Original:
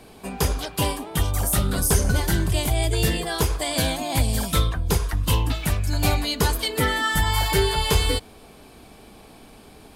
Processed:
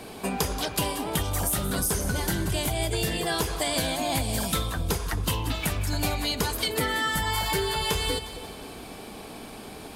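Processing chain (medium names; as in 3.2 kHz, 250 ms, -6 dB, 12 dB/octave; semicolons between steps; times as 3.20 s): bass shelf 83 Hz -9.5 dB; compression 6:1, threshold -31 dBFS, peak gain reduction 13.5 dB; two-band feedback delay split 780 Hz, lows 267 ms, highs 179 ms, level -12.5 dB; trim +6.5 dB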